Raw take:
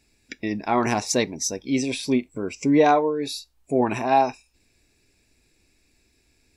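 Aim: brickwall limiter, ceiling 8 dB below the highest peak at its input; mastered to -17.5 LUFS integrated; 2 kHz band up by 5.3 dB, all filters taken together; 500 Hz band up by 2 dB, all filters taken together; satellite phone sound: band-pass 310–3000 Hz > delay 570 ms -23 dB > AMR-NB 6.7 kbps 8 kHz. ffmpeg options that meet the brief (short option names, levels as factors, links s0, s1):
-af "equalizer=f=500:t=o:g=3,equalizer=f=2000:t=o:g=7.5,alimiter=limit=0.266:level=0:latency=1,highpass=310,lowpass=3000,aecho=1:1:570:0.0708,volume=2.66" -ar 8000 -c:a libopencore_amrnb -b:a 6700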